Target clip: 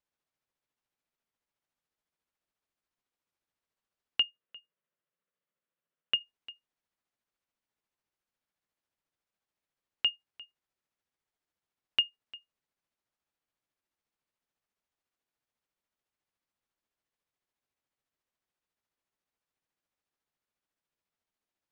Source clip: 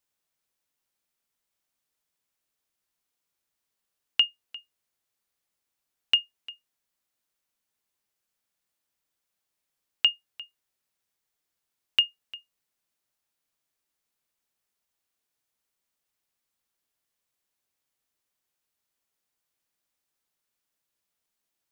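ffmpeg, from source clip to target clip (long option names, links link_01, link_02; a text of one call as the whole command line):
ffmpeg -i in.wav -filter_complex "[0:a]aemphasis=mode=reproduction:type=75kf,tremolo=f=14:d=0.41,asplit=3[link_01][link_02][link_03];[link_01]afade=type=out:start_time=4.22:duration=0.02[link_04];[link_02]highpass=160,equalizer=frequency=160:width_type=q:width=4:gain=7,equalizer=frequency=290:width_type=q:width=4:gain=-5,equalizer=frequency=550:width_type=q:width=4:gain=5,equalizer=frequency=790:width_type=q:width=4:gain=-10,equalizer=frequency=2300:width_type=q:width=4:gain=-4,lowpass=frequency=3300:width=0.5412,lowpass=frequency=3300:width=1.3066,afade=type=in:start_time=4.22:duration=0.02,afade=type=out:start_time=6.19:duration=0.02[link_05];[link_03]afade=type=in:start_time=6.19:duration=0.02[link_06];[link_04][link_05][link_06]amix=inputs=3:normalize=0" out.wav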